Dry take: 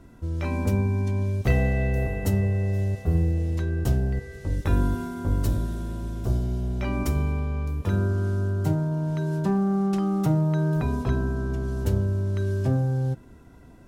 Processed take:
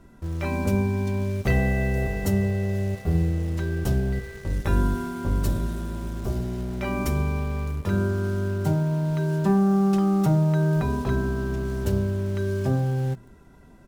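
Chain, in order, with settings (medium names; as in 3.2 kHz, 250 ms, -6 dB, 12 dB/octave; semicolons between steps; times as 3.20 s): hum notches 60/120/180/240/300/360/420 Hz; comb 5.1 ms, depth 32%; in parallel at -11 dB: word length cut 6-bit, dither none; on the sum: trim -1 dB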